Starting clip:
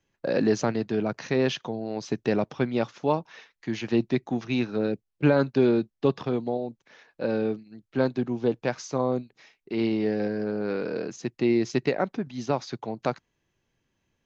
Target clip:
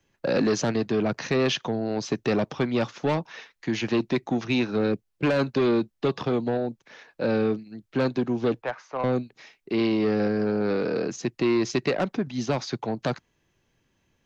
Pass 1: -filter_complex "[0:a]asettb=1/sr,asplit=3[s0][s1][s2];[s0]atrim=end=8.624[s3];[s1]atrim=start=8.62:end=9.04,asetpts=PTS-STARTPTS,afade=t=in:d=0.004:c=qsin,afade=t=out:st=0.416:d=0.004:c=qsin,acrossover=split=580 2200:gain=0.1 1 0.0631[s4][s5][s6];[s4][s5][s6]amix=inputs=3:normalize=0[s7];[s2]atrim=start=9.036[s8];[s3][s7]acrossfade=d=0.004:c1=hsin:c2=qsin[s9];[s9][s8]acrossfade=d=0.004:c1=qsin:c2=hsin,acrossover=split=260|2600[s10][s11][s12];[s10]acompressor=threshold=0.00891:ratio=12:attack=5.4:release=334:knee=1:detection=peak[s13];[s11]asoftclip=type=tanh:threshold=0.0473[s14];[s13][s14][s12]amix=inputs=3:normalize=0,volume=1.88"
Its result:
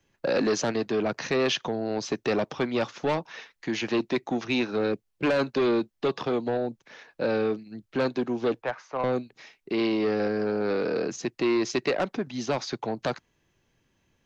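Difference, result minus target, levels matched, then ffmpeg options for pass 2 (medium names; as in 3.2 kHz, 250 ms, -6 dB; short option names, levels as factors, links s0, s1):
compression: peak gain reduction +9 dB
-filter_complex "[0:a]asettb=1/sr,asplit=3[s0][s1][s2];[s0]atrim=end=8.624[s3];[s1]atrim=start=8.62:end=9.04,asetpts=PTS-STARTPTS,afade=t=in:d=0.004:c=qsin,afade=t=out:st=0.416:d=0.004:c=qsin,acrossover=split=580 2200:gain=0.1 1 0.0631[s4][s5][s6];[s4][s5][s6]amix=inputs=3:normalize=0[s7];[s2]atrim=start=9.036[s8];[s3][s7]acrossfade=d=0.004:c1=hsin:c2=qsin[s9];[s9][s8]acrossfade=d=0.004:c1=qsin:c2=hsin,acrossover=split=260|2600[s10][s11][s12];[s10]acompressor=threshold=0.0282:ratio=12:attack=5.4:release=334:knee=1:detection=peak[s13];[s11]asoftclip=type=tanh:threshold=0.0473[s14];[s13][s14][s12]amix=inputs=3:normalize=0,volume=1.88"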